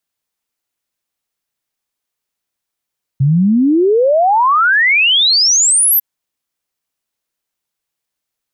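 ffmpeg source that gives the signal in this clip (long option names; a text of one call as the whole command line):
ffmpeg -f lavfi -i "aevalsrc='0.398*clip(min(t,2.8-t)/0.01,0,1)*sin(2*PI*130*2.8/log(13000/130)*(exp(log(13000/130)*t/2.8)-1))':duration=2.8:sample_rate=44100" out.wav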